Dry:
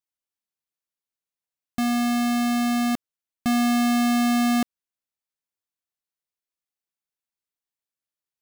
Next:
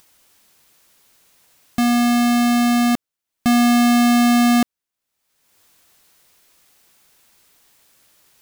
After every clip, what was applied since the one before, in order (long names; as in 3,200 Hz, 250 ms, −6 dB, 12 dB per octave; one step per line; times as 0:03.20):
upward compression, threshold −40 dBFS
level +6.5 dB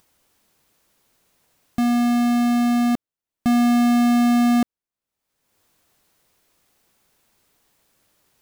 tilt shelving filter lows +4 dB, about 1,100 Hz
level −5.5 dB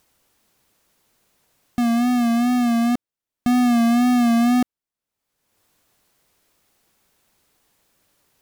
tape wow and flutter 59 cents